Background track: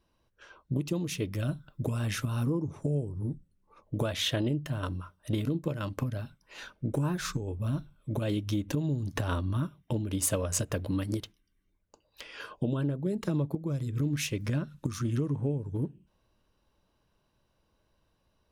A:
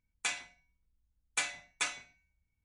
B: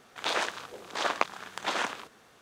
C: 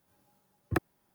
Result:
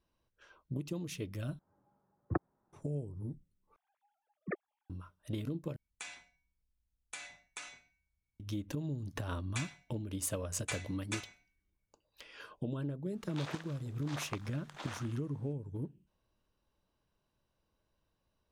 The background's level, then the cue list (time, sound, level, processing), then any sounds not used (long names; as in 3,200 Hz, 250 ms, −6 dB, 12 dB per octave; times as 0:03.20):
background track −8 dB
0:01.59: overwrite with C −3 dB + low-pass filter 1,400 Hz 24 dB per octave
0:03.76: overwrite with C −9 dB + three sine waves on the formant tracks
0:05.76: overwrite with A −6 dB + downward compressor 3 to 1, threshold −36 dBFS
0:09.31: mix in A −7 dB
0:13.12: mix in B −16 dB